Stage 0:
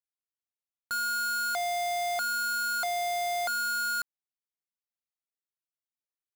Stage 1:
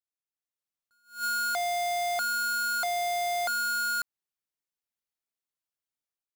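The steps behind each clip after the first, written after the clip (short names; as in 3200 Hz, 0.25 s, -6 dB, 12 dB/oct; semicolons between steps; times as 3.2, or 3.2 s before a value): AGC gain up to 9 dB; attack slew limiter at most 190 dB/s; gain -8 dB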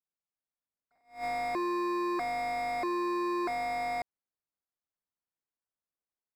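cycle switcher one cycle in 2, inverted; running mean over 14 samples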